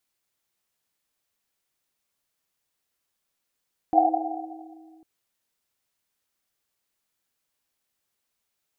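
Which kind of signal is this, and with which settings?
Risset drum, pitch 320 Hz, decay 2.55 s, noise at 740 Hz, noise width 110 Hz, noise 70%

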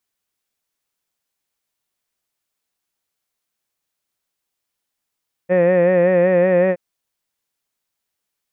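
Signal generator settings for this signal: formant-synthesis vowel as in head, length 1.27 s, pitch 177 Hz, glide +0.5 st, vibrato depth 0.65 st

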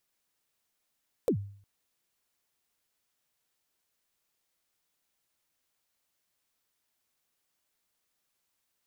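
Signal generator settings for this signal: kick drum length 0.36 s, from 550 Hz, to 100 Hz, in 86 ms, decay 0.54 s, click on, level -20 dB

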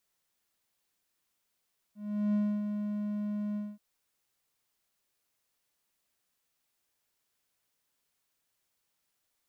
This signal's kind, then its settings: ADSR triangle 208 Hz, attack 387 ms, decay 278 ms, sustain -6.5 dB, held 1.61 s, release 221 ms -22.5 dBFS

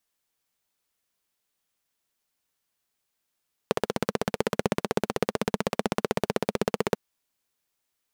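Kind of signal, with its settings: single-cylinder engine model, steady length 3.24 s, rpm 1900, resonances 210/430 Hz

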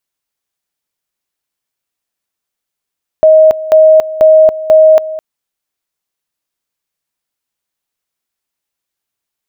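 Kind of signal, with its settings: two-level tone 629 Hz -1.5 dBFS, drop 16 dB, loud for 0.28 s, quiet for 0.21 s, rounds 4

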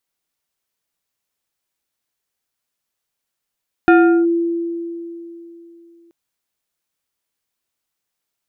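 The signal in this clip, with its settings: FM tone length 2.23 s, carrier 338 Hz, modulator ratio 3.16, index 0.91, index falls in 0.38 s linear, decay 3.18 s, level -5.5 dB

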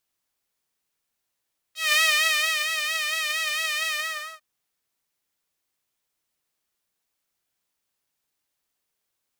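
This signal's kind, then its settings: synth patch with vibrato D#5, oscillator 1 saw, sub -25.5 dB, noise -28.5 dB, filter highpass, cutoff 1.3 kHz, Q 1.9, filter envelope 1.5 oct, filter decay 0.07 s, filter sustain 50%, attack 190 ms, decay 0.74 s, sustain -7.5 dB, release 0.51 s, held 2.14 s, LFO 4.4 Hz, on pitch 63 cents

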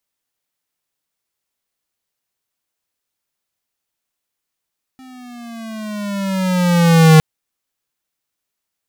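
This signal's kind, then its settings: gliding synth tone square, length 2.21 s, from 262 Hz, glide -9 st, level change +33.5 dB, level -6 dB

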